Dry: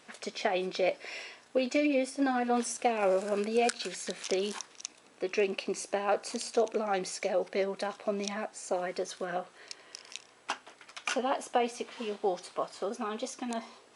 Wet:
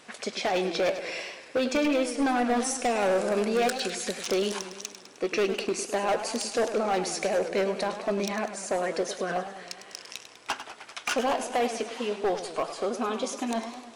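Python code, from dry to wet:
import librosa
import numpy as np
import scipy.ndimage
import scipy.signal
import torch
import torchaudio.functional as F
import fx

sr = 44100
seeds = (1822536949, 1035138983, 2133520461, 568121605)

y = np.clip(10.0 ** (27.0 / 20.0) * x, -1.0, 1.0) / 10.0 ** (27.0 / 20.0)
y = fx.echo_warbled(y, sr, ms=102, feedback_pct=62, rate_hz=2.8, cents=144, wet_db=-11.0)
y = y * 10.0 ** (5.5 / 20.0)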